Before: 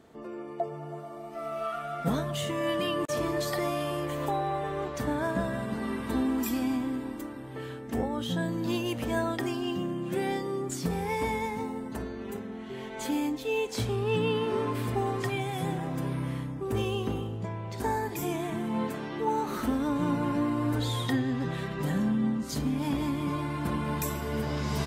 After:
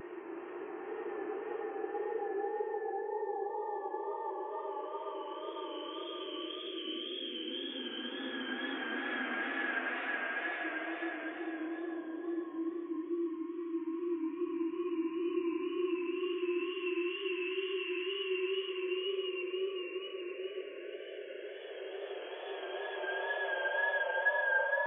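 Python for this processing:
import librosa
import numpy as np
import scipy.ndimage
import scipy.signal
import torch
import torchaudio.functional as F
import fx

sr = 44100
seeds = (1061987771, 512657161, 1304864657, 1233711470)

y = fx.sine_speech(x, sr)
y = fx.paulstretch(y, sr, seeds[0], factor=19.0, window_s=0.25, from_s=7.89)
y = fx.wow_flutter(y, sr, seeds[1], rate_hz=2.1, depth_cents=52.0)
y = y * 10.0 ** (-6.5 / 20.0)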